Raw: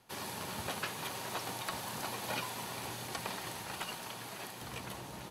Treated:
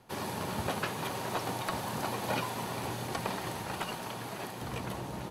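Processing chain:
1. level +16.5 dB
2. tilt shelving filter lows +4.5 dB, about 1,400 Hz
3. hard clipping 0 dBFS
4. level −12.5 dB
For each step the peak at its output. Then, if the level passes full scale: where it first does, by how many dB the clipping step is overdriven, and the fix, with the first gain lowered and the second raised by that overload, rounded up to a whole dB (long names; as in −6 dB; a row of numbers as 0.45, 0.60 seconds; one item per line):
−6.5, −5.0, −5.0, −17.5 dBFS
no step passes full scale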